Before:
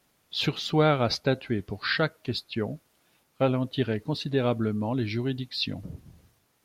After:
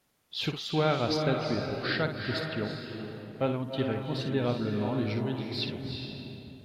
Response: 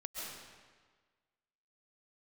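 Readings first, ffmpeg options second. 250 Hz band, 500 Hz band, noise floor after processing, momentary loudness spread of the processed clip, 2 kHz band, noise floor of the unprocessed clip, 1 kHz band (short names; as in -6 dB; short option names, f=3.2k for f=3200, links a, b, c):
-2.5 dB, -2.5 dB, -51 dBFS, 12 LU, -3.0 dB, -69 dBFS, -2.5 dB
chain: -filter_complex "[0:a]asplit=2[a][b];[1:a]atrim=start_sample=2205,asetrate=22050,aresample=44100,adelay=57[c];[b][c]afir=irnorm=-1:irlink=0,volume=-7dB[d];[a][d]amix=inputs=2:normalize=0,volume=-5dB"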